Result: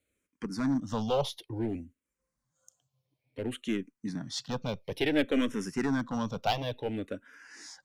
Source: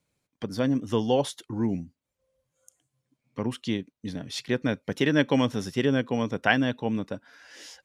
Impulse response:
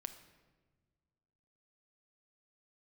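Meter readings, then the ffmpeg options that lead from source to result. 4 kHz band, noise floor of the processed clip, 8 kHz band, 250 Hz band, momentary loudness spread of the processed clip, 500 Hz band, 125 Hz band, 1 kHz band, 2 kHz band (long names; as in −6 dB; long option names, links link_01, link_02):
−4.0 dB, below −85 dBFS, −2.5 dB, −5.0 dB, 13 LU, −5.5 dB, −6.5 dB, −3.5 dB, −8.5 dB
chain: -filter_complex "[0:a]aeval=exprs='clip(val(0),-1,0.0708)':channel_layout=same,asplit=2[link_01][link_02];[link_02]afreqshift=-0.57[link_03];[link_01][link_03]amix=inputs=2:normalize=1"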